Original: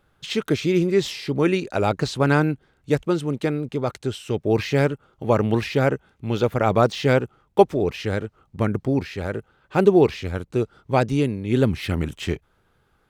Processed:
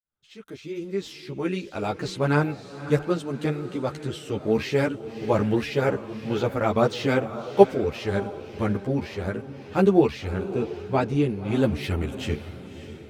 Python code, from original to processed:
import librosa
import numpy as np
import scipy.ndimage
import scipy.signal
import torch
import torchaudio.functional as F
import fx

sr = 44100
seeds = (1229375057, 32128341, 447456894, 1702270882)

y = fx.fade_in_head(x, sr, length_s=2.66)
y = fx.high_shelf(y, sr, hz=4500.0, db=-8.5, at=(10.33, 11.28))
y = fx.echo_diffused(y, sr, ms=585, feedback_pct=42, wet_db=-12.5)
y = fx.ensemble(y, sr)